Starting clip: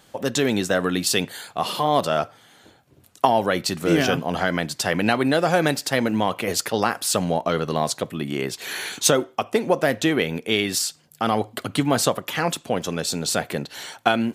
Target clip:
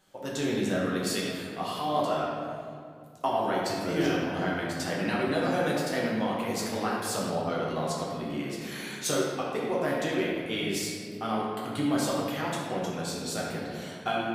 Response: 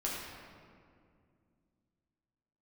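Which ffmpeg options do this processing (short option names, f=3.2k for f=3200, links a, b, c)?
-filter_complex "[0:a]flanger=delay=5.3:depth=9.2:regen=69:speed=0.39:shape=sinusoidal[a];[1:a]atrim=start_sample=2205[b];[a][b]afir=irnorm=-1:irlink=0,volume=-7.5dB"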